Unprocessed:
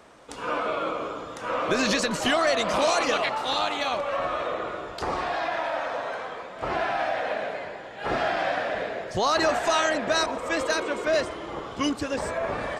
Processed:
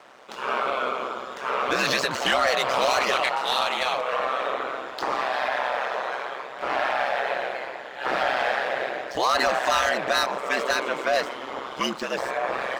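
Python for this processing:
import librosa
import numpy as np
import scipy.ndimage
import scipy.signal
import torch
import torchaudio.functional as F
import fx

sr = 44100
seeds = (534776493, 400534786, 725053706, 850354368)

p1 = scipy.signal.medfilt(x, 5)
p2 = fx.weighting(p1, sr, curve='A')
p3 = fx.fold_sine(p2, sr, drive_db=8, ceiling_db=-11.0)
p4 = p2 + (p3 * 10.0 ** (-11.0 / 20.0))
y = p4 * np.sin(2.0 * np.pi * 65.0 * np.arange(len(p4)) / sr)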